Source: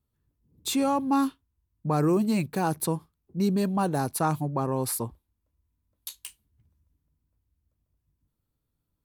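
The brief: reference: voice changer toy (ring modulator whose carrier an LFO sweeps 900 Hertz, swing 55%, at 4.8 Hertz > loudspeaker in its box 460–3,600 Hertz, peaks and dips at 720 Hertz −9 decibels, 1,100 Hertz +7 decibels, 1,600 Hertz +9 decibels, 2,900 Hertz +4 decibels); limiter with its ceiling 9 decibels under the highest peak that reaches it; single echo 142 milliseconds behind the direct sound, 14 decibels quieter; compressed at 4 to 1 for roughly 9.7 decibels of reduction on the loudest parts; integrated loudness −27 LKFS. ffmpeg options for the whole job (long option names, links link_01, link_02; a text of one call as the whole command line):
ffmpeg -i in.wav -af "acompressor=threshold=-32dB:ratio=4,alimiter=level_in=4.5dB:limit=-24dB:level=0:latency=1,volume=-4.5dB,aecho=1:1:142:0.2,aeval=exprs='val(0)*sin(2*PI*900*n/s+900*0.55/4.8*sin(2*PI*4.8*n/s))':channel_layout=same,highpass=460,equalizer=frequency=720:width_type=q:width=4:gain=-9,equalizer=frequency=1100:width_type=q:width=4:gain=7,equalizer=frequency=1600:width_type=q:width=4:gain=9,equalizer=frequency=2900:width_type=q:width=4:gain=4,lowpass=frequency=3600:width=0.5412,lowpass=frequency=3600:width=1.3066,volume=8.5dB" out.wav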